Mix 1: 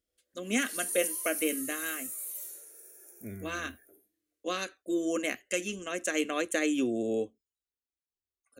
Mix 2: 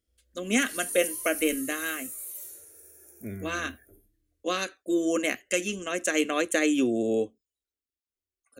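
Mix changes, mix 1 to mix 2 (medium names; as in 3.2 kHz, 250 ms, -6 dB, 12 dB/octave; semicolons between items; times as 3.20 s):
speech +4.5 dB; background: remove high-pass 360 Hz 12 dB/octave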